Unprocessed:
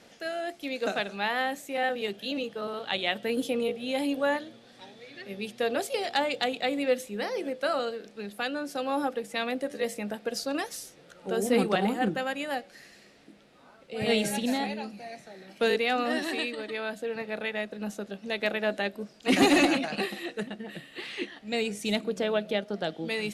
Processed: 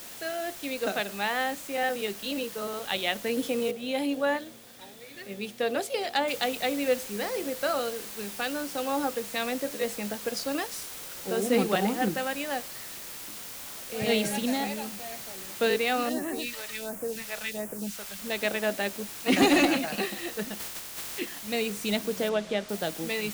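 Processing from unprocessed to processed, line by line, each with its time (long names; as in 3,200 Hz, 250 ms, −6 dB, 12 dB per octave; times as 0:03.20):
0:03.71: noise floor change −44 dB −66 dB
0:06.28: noise floor change −53 dB −41 dB
0:16.09–0:18.19: all-pass phaser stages 2, 1.4 Hz, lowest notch 250–3,900 Hz
0:20.58–0:21.17: ceiling on every frequency bin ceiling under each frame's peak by 26 dB
0:22.29–0:22.69: high-frequency loss of the air 81 metres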